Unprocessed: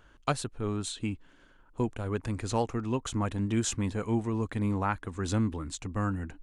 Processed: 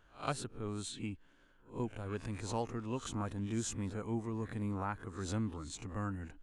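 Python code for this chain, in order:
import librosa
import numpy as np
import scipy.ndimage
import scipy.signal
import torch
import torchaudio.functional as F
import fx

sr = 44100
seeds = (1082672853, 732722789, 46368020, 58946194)

y = fx.spec_swells(x, sr, rise_s=0.3)
y = fx.dynamic_eq(y, sr, hz=2900.0, q=1.0, threshold_db=-46.0, ratio=4.0, max_db=-5, at=(3.2, 5.27))
y = y * 10.0 ** (-8.5 / 20.0)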